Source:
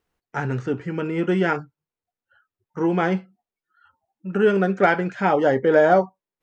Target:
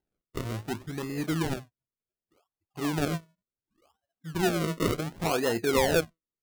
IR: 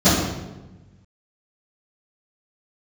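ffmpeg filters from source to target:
-af "bandreject=frequency=700:width=18,asetrate=38170,aresample=44100,atempo=1.15535,acrusher=samples=37:mix=1:aa=0.000001:lfo=1:lforange=37:lforate=0.68,volume=-8.5dB"

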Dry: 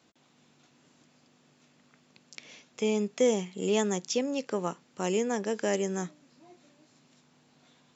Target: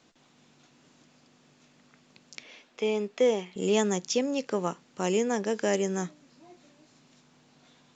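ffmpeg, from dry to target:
ffmpeg -i in.wav -filter_complex "[0:a]asettb=1/sr,asplit=3[link_01][link_02][link_03];[link_01]atrim=end=2.434[link_04];[link_02]atrim=start=2.43:end=3.56,asetpts=PTS-STARTPTS,afade=type=in:duration=0.004:curve=qsin,afade=type=out:start_time=1.126:duration=0.004:curve=qsin,highpass=290,lowpass=4100[link_05];[link_03]atrim=start=3.556[link_06];[link_04][link_05]acrossfade=duration=0.004:curve1=hsin:curve2=qsin[link_07];[link_07][link_06]acrossfade=duration=0.004:curve1=qsin:curve2=hsin,volume=2dB" -ar 16000 -c:a pcm_alaw out.wav

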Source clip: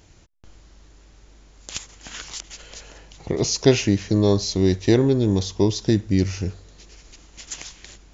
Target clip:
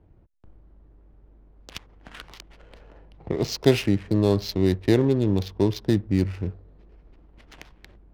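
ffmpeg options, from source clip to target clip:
ffmpeg -i in.wav -filter_complex "[0:a]lowpass=frequency=5300:width=0.5412,lowpass=frequency=5300:width=1.3066,acrossover=split=160[link_01][link_02];[link_02]adynamicsmooth=sensitivity=6:basefreq=720[link_03];[link_01][link_03]amix=inputs=2:normalize=0,volume=-2.5dB" out.wav

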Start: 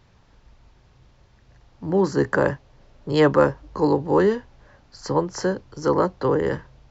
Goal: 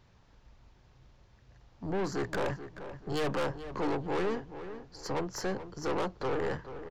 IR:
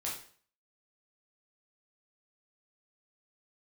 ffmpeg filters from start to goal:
-filter_complex "[0:a]aeval=exprs='(tanh(17.8*val(0)+0.45)-tanh(0.45))/17.8':channel_layout=same,asplit=2[link_01][link_02];[link_02]adelay=434,lowpass=frequency=2700:poles=1,volume=-11.5dB,asplit=2[link_03][link_04];[link_04]adelay=434,lowpass=frequency=2700:poles=1,volume=0.36,asplit=2[link_05][link_06];[link_06]adelay=434,lowpass=frequency=2700:poles=1,volume=0.36,asplit=2[link_07][link_08];[link_08]adelay=434,lowpass=frequency=2700:poles=1,volume=0.36[link_09];[link_01][link_03][link_05][link_07][link_09]amix=inputs=5:normalize=0,volume=-4dB"

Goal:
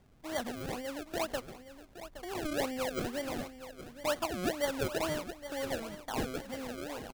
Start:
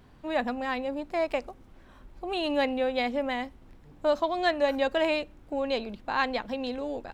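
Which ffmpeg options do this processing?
ffmpeg -i in.wav -af "acrusher=samples=33:mix=1:aa=0.000001:lfo=1:lforange=33:lforate=2.1,aecho=1:1:818:0.237,aeval=exprs='0.15*(abs(mod(val(0)/0.15+3,4)-2)-1)':channel_layout=same,volume=-7.5dB" out.wav

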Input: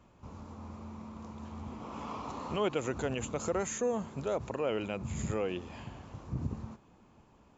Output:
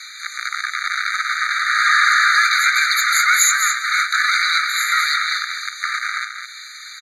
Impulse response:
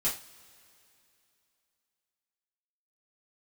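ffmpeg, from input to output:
-filter_complex "[0:a]aemphasis=mode=production:type=75fm,asetrate=47628,aresample=44100,acrossover=split=160|1900[link_01][link_02][link_03];[link_02]acrusher=bits=6:mix=0:aa=0.000001[link_04];[link_01][link_04][link_03]amix=inputs=3:normalize=0,acontrast=69,adynamicequalizer=threshold=0.00891:dfrequency=550:dqfactor=2:tfrequency=550:tqfactor=2:attack=5:release=100:ratio=0.375:range=2:mode=cutabove:tftype=bell,asplit=2[link_05][link_06];[link_06]asetrate=66075,aresample=44100,atempo=0.66742,volume=-2dB[link_07];[link_05][link_07]amix=inputs=2:normalize=0,lowpass=4000,asplit=2[link_08][link_09];[link_09]asoftclip=type=tanh:threshold=-21.5dB,volume=-3.5dB[link_10];[link_08][link_10]amix=inputs=2:normalize=0,apsyclip=23dB,acompressor=threshold=-24dB:ratio=2.5,aecho=1:1:213:0.447,afftfilt=real='re*eq(mod(floor(b*sr/1024/1200),2),1)':imag='im*eq(mod(floor(b*sr/1024/1200),2),1)':win_size=1024:overlap=0.75,volume=9dB"

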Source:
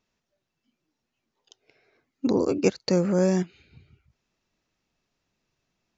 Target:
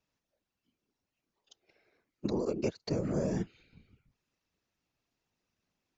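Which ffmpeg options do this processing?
ffmpeg -i in.wav -filter_complex "[0:a]afftfilt=real='hypot(re,im)*cos(2*PI*random(0))':imag='hypot(re,im)*sin(2*PI*random(1))':win_size=512:overlap=0.75,acrossover=split=580|5700[link_01][link_02][link_03];[link_01]acompressor=threshold=-29dB:ratio=4[link_04];[link_02]acompressor=threshold=-42dB:ratio=4[link_05];[link_03]acompressor=threshold=-57dB:ratio=4[link_06];[link_04][link_05][link_06]amix=inputs=3:normalize=0" out.wav

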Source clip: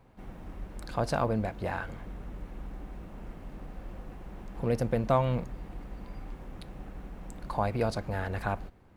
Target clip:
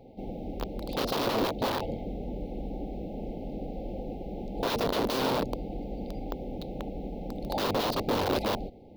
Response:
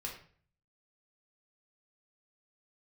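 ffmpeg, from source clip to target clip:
-af "afftfilt=real='re*(1-between(b*sr/4096,880,2000))':imag='im*(1-between(b*sr/4096,880,2000))':win_size=4096:overlap=0.75,aeval=exprs='(mod(33.5*val(0)+1,2)-1)/33.5':channel_layout=same,equalizer=frequency=250:width_type=o:width=1:gain=8,equalizer=frequency=500:width_type=o:width=1:gain=10,equalizer=frequency=1000:width_type=o:width=1:gain=5,equalizer=frequency=2000:width_type=o:width=1:gain=-6,equalizer=frequency=4000:width_type=o:width=1:gain=8,equalizer=frequency=8000:width_type=o:width=1:gain=-12,volume=2dB"

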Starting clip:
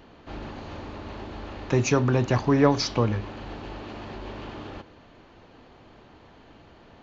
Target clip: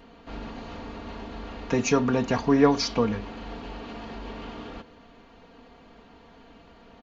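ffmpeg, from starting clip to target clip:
ffmpeg -i in.wav -af "aecho=1:1:4.3:0.64,volume=-1.5dB" out.wav

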